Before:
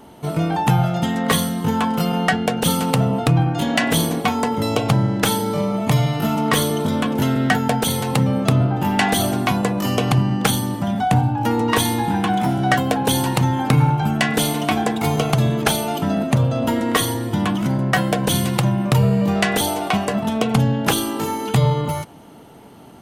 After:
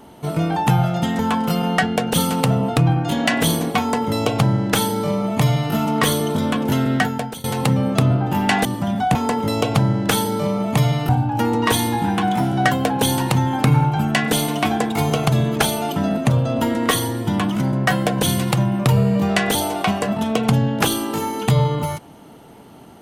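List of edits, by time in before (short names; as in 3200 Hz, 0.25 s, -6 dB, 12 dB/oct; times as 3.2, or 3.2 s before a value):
1.19–1.69 cut
4.29–6.23 copy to 11.15
7.44–7.94 fade out, to -22 dB
9.15–10.65 cut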